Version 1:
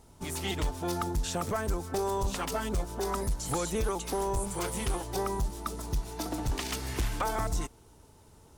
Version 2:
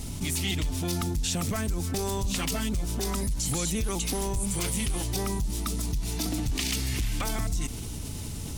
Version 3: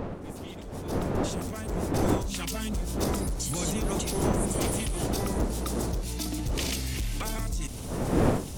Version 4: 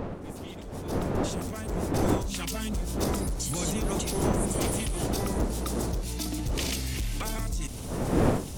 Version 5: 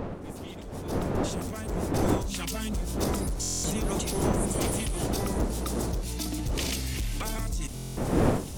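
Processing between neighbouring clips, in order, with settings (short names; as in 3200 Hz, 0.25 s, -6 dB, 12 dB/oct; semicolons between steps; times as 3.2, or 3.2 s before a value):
band shelf 770 Hz -11 dB 2.5 oct; notch 910 Hz, Q 13; fast leveller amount 70%
opening faded in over 2.78 s; wind noise 440 Hz -29 dBFS; wow and flutter 16 cents; gain -2.5 dB
nothing audible
stuck buffer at 3.41/7.74, samples 1024, times 9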